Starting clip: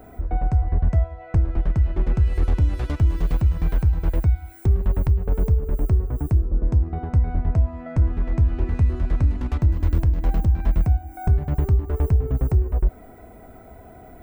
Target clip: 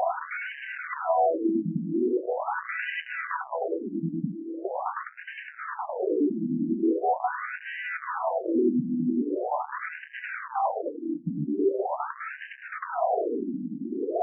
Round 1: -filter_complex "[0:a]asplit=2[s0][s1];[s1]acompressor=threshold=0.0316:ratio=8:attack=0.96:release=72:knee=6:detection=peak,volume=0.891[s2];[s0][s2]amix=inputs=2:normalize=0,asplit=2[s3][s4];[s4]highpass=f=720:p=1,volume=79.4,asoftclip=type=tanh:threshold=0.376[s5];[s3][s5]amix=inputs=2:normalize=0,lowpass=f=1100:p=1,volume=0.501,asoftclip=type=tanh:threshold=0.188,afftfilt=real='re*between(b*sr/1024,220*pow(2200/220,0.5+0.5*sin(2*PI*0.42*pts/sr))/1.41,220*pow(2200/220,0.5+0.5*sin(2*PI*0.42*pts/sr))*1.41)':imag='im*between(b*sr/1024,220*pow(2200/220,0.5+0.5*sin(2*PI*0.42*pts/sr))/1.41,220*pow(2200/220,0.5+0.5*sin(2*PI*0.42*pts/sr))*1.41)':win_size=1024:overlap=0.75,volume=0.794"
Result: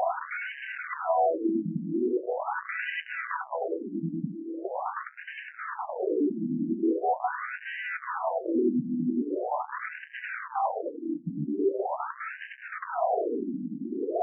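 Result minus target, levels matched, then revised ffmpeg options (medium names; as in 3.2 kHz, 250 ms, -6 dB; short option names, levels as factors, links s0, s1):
saturation: distortion +10 dB
-filter_complex "[0:a]asplit=2[s0][s1];[s1]acompressor=threshold=0.0316:ratio=8:attack=0.96:release=72:knee=6:detection=peak,volume=0.891[s2];[s0][s2]amix=inputs=2:normalize=0,asplit=2[s3][s4];[s4]highpass=f=720:p=1,volume=79.4,asoftclip=type=tanh:threshold=0.376[s5];[s3][s5]amix=inputs=2:normalize=0,lowpass=f=1100:p=1,volume=0.501,asoftclip=type=tanh:threshold=0.422,afftfilt=real='re*between(b*sr/1024,220*pow(2200/220,0.5+0.5*sin(2*PI*0.42*pts/sr))/1.41,220*pow(2200/220,0.5+0.5*sin(2*PI*0.42*pts/sr))*1.41)':imag='im*between(b*sr/1024,220*pow(2200/220,0.5+0.5*sin(2*PI*0.42*pts/sr))/1.41,220*pow(2200/220,0.5+0.5*sin(2*PI*0.42*pts/sr))*1.41)':win_size=1024:overlap=0.75,volume=0.794"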